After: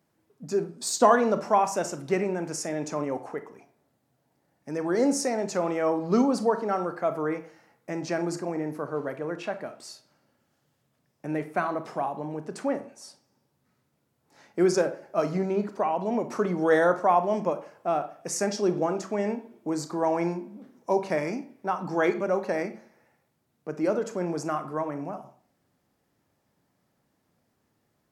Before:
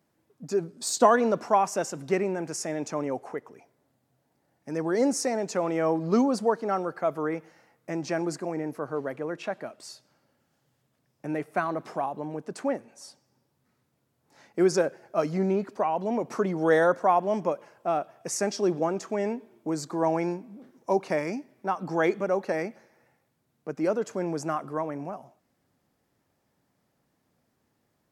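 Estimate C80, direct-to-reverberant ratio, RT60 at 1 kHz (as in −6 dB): 18.0 dB, 9.5 dB, 0.45 s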